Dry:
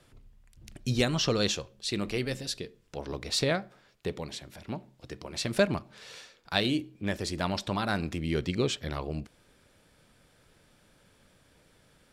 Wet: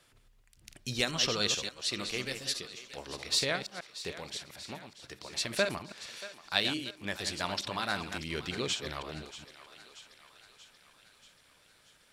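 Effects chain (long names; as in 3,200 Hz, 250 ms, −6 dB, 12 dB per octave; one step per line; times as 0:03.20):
delay that plays each chunk backwards 141 ms, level −8 dB
tilt shelving filter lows −6 dB, about 680 Hz
on a send: feedback echo with a high-pass in the loop 633 ms, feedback 62%, high-pass 550 Hz, level −14.5 dB
on the sum: level −5 dB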